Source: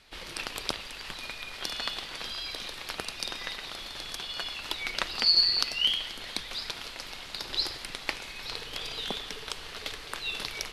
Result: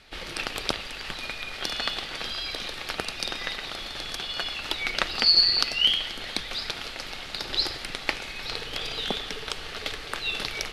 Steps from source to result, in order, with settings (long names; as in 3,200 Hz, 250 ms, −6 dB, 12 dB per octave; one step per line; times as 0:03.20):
high-shelf EQ 5,600 Hz −7 dB
notch filter 1,000 Hz, Q 9.2
level +6 dB